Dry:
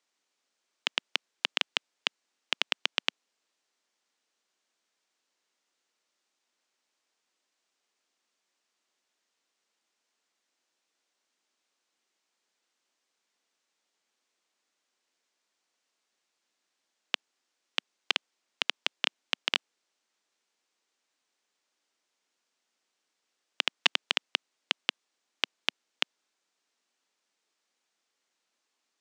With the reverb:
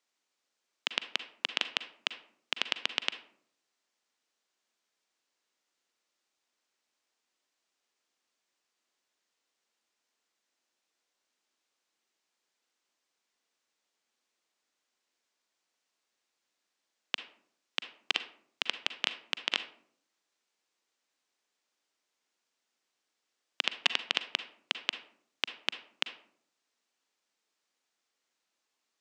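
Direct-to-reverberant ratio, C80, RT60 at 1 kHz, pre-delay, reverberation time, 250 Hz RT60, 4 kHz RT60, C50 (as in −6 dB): 10.5 dB, 16.5 dB, 0.55 s, 37 ms, 0.65 s, 0.80 s, 0.30 s, 12.0 dB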